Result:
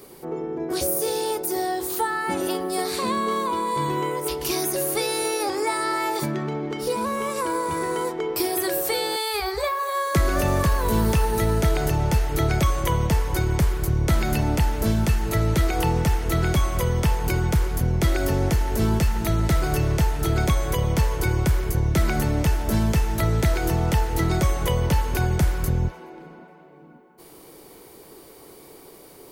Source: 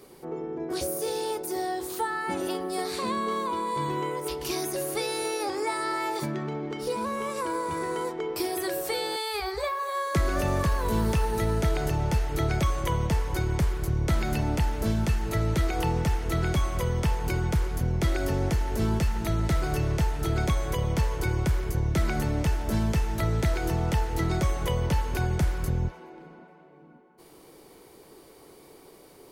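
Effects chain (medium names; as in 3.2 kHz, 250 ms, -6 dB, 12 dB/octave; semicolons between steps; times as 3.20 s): treble shelf 12 kHz +9.5 dB; trim +4.5 dB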